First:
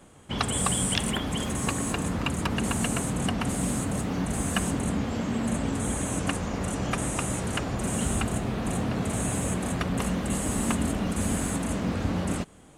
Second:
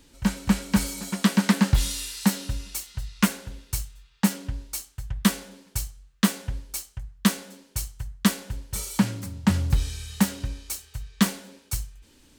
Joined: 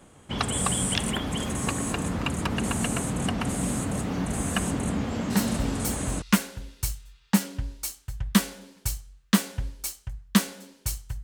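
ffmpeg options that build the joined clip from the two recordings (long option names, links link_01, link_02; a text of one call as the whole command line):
ffmpeg -i cue0.wav -i cue1.wav -filter_complex "[0:a]apad=whole_dur=11.23,atrim=end=11.23,atrim=end=6.22,asetpts=PTS-STARTPTS[link_01];[1:a]atrim=start=2.2:end=8.13,asetpts=PTS-STARTPTS[link_02];[link_01][link_02]acrossfade=duration=0.92:curve1=log:curve2=log" out.wav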